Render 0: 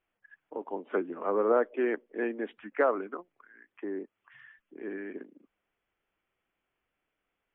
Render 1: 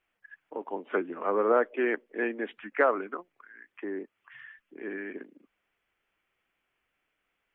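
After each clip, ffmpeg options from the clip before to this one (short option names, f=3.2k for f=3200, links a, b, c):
-af "equalizer=f=2.3k:t=o:w=2:g=6.5"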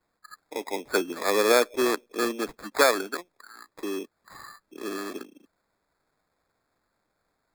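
-af "acrusher=samples=15:mix=1:aa=0.000001,volume=3.5dB"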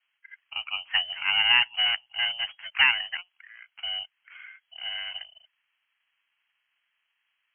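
-af "lowshelf=f=130:g=-5.5,lowpass=f=2.8k:t=q:w=0.5098,lowpass=f=2.8k:t=q:w=0.6013,lowpass=f=2.8k:t=q:w=0.9,lowpass=f=2.8k:t=q:w=2.563,afreqshift=-3300"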